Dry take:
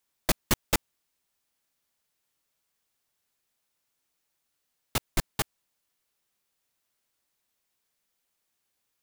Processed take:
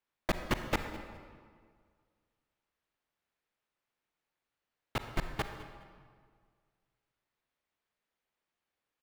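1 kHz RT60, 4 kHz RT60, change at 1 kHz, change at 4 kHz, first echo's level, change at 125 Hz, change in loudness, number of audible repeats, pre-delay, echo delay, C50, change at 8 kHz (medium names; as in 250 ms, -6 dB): 1.8 s, 1.3 s, -2.5 dB, -9.0 dB, -19.0 dB, -4.0 dB, -7.0 dB, 1, 37 ms, 207 ms, 7.0 dB, -17.0 dB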